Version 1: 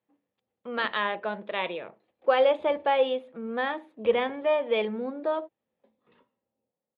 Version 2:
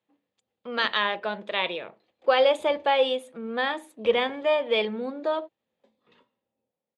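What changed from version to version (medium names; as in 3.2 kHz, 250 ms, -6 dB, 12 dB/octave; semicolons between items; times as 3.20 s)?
master: remove distance through air 360 m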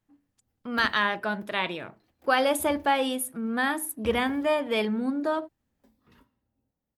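master: remove cabinet simulation 250–6200 Hz, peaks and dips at 280 Hz -8 dB, 510 Hz +8 dB, 1.5 kHz -5 dB, 2.5 kHz +3 dB, 3.5 kHz +6 dB, 5.5 kHz -10 dB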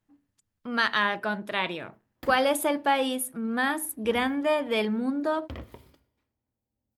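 background: entry +1.45 s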